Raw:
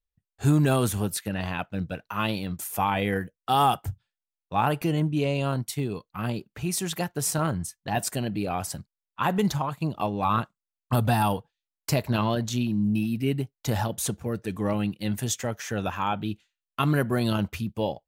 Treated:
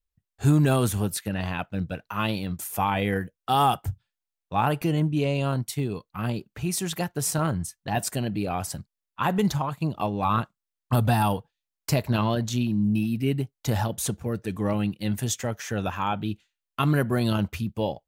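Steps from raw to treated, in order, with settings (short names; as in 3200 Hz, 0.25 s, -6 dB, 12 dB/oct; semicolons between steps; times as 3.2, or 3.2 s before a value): low shelf 130 Hz +3.5 dB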